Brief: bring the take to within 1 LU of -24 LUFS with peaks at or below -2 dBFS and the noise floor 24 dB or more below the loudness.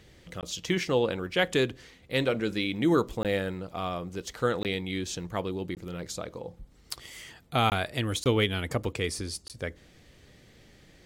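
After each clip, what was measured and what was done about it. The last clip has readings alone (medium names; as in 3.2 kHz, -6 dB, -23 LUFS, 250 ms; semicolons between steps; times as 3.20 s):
dropouts 7; longest dropout 18 ms; loudness -30.0 LUFS; peak level -9.5 dBFS; loudness target -24.0 LUFS
-> interpolate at 0.41/3.23/4.63/5.75/7.70/8.24/9.48 s, 18 ms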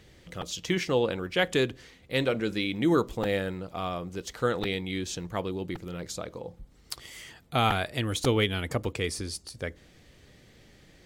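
dropouts 0; loudness -29.5 LUFS; peak level -9.5 dBFS; loudness target -24.0 LUFS
-> trim +5.5 dB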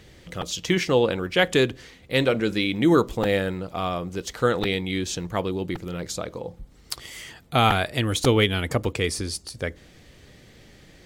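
loudness -24.0 LUFS; peak level -4.0 dBFS; noise floor -52 dBFS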